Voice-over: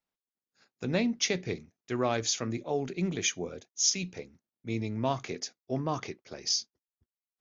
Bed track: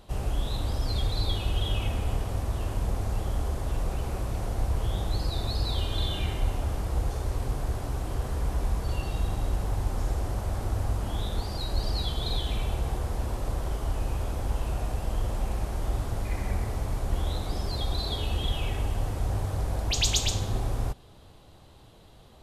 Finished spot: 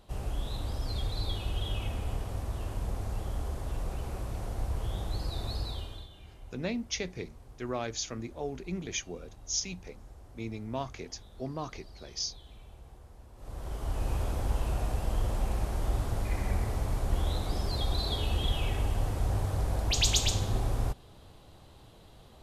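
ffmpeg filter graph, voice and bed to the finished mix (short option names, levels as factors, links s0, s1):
-filter_complex "[0:a]adelay=5700,volume=0.531[s0];[1:a]volume=5.96,afade=t=out:st=5.54:d=0.54:silence=0.149624,afade=t=in:st=13.35:d=0.79:silence=0.0891251[s1];[s0][s1]amix=inputs=2:normalize=0"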